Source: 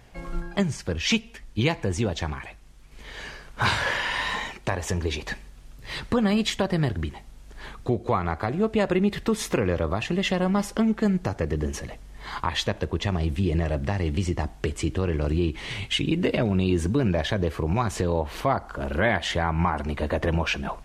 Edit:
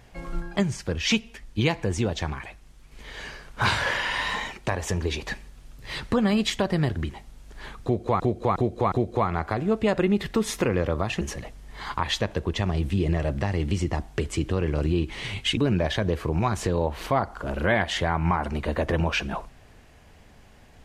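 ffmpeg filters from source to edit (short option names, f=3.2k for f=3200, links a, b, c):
-filter_complex "[0:a]asplit=6[a][b][c][d][e][f];[a]atrim=end=8.202[g];[b]atrim=start=7.838:end=8.202[h];[c]atrim=start=7.838:end=8.202[i];[d]atrim=start=7.838:end=10.132[j];[e]atrim=start=11.668:end=16.032[k];[f]atrim=start=16.908[l];[g][h]acrossfade=d=0.004:c1=hsin:c2=hsin[m];[m][i]acrossfade=d=0.004:c1=hsin:c2=hsin[n];[n][j]acrossfade=d=0.004:c1=hsin:c2=hsin[o];[o][k]acrossfade=d=0.004:c1=hsin:c2=hsin[p];[p][l]acrossfade=d=0.004:c1=hsin:c2=hsin"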